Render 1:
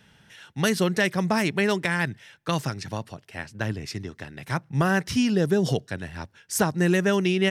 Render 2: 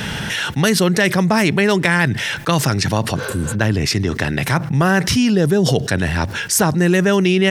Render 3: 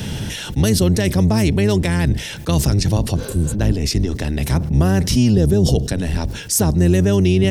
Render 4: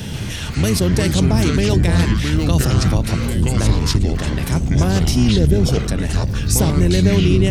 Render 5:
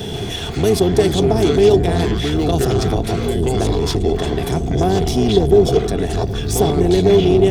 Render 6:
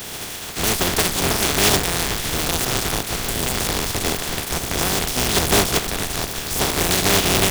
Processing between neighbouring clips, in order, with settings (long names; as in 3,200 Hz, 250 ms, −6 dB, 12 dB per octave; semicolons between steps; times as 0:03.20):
healed spectral selection 0:03.18–0:03.52, 430–6,500 Hz after; envelope flattener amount 70%; level +5 dB
sub-octave generator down 1 octave, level −1 dB; parametric band 1,500 Hz −13 dB 1.9 octaves
delay with pitch and tempo change per echo 137 ms, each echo −5 semitones, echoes 3; level −1.5 dB
leveller curve on the samples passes 2; hollow resonant body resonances 410/700/3,400 Hz, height 17 dB, ringing for 40 ms; level −10 dB
compressing power law on the bin magnitudes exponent 0.27; in parallel at −7 dB: comparator with hysteresis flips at −9.5 dBFS; on the sum: level −6.5 dB